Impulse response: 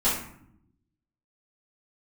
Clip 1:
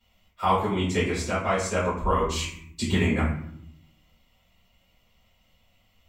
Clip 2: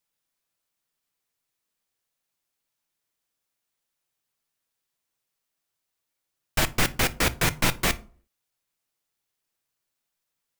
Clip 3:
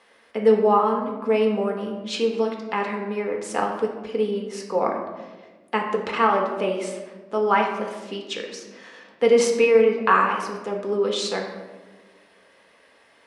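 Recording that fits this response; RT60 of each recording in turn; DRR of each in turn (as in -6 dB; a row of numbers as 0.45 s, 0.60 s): 1; 0.65 s, 0.45 s, 1.3 s; -12.5 dB, 11.5 dB, 0.5 dB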